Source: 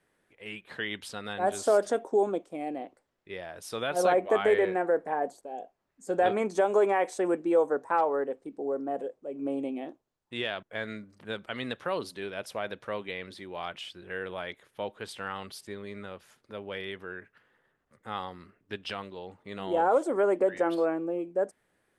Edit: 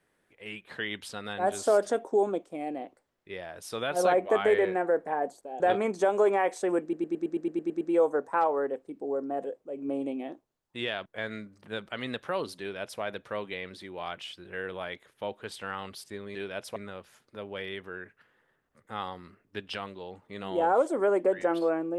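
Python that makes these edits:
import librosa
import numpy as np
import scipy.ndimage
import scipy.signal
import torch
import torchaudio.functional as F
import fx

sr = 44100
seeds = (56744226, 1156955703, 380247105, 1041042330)

y = fx.edit(x, sr, fx.cut(start_s=5.6, length_s=0.56),
    fx.stutter(start_s=7.38, slice_s=0.11, count=10),
    fx.duplicate(start_s=12.17, length_s=0.41, to_s=15.92), tone=tone)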